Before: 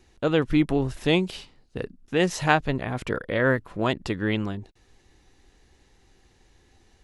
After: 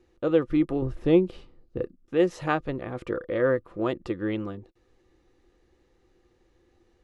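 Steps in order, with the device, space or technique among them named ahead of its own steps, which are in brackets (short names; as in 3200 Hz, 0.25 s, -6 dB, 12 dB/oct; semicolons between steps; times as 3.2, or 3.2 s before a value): 0.82–1.83 tilt -2 dB/oct; inside a helmet (high shelf 4000 Hz -9 dB; small resonant body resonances 350/500/1200 Hz, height 12 dB, ringing for 55 ms); gain -7.5 dB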